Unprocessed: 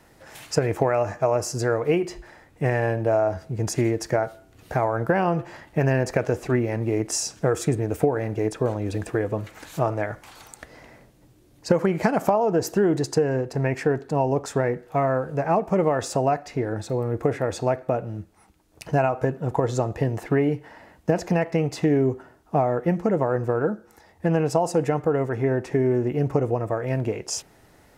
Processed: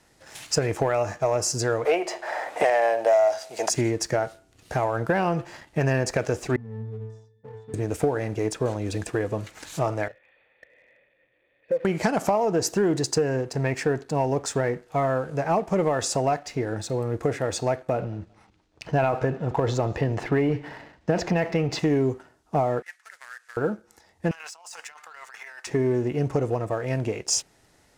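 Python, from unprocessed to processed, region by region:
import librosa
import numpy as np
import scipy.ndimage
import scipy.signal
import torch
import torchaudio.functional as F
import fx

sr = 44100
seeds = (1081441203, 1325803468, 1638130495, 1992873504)

y = fx.chain(x, sr, fx.highpass_res(hz=660.0, q=3.3),
    fx.band_squash(depth_pct=100), at=(1.85, 3.7))
y = fx.chain(y, sr, fx.octave_resonator(note='A', decay_s=0.65),
    fx.band_squash(depth_pct=40), at=(6.56, 7.74))
y = fx.chain(y, sr, fx.crossing_spikes(level_db=-21.5),
    fx.formant_cascade(vowel='e'), at=(10.08, 11.85))
y = fx.chain(y, sr, fx.lowpass(hz=3800.0, slope=12),
    fx.transient(attack_db=1, sustain_db=6),
    fx.echo_feedback(ms=183, feedback_pct=34, wet_db=-22.5), at=(17.93, 21.79))
y = fx.chain(y, sr, fx.cvsd(bps=64000),
    fx.ladder_highpass(hz=1500.0, resonance_pct=60), at=(22.82, 23.57))
y = fx.chain(y, sr, fx.highpass(hz=1100.0, slope=24),
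    fx.over_compress(threshold_db=-43.0, ratio=-1.0), at=(24.31, 25.67))
y = scipy.signal.sosfilt(scipy.signal.butter(2, 8300.0, 'lowpass', fs=sr, output='sos'), y)
y = fx.high_shelf(y, sr, hz=3500.0, db=11.5)
y = fx.leveller(y, sr, passes=1)
y = y * 10.0 ** (-5.5 / 20.0)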